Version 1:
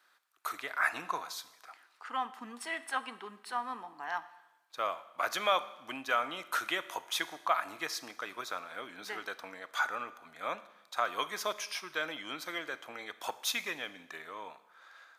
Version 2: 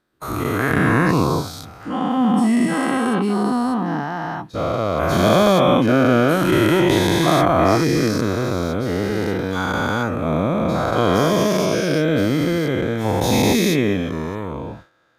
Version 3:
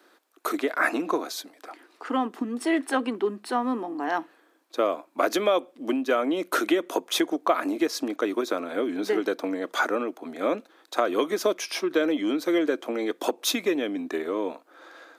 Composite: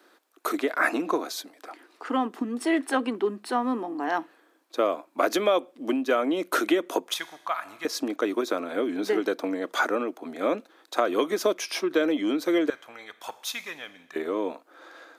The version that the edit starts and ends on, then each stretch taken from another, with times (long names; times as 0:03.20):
3
0:07.14–0:07.85: punch in from 1
0:12.70–0:14.16: punch in from 1
not used: 2